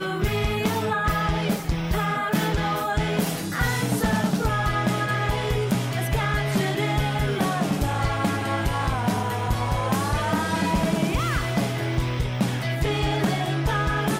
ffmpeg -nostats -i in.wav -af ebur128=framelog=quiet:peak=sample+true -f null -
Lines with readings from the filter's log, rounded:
Integrated loudness:
  I:         -24.3 LUFS
  Threshold: -34.3 LUFS
Loudness range:
  LRA:         0.6 LU
  Threshold: -44.3 LUFS
  LRA low:   -24.5 LUFS
  LRA high:  -23.9 LUFS
Sample peak:
  Peak:      -13.3 dBFS
True peak:
  Peak:      -13.3 dBFS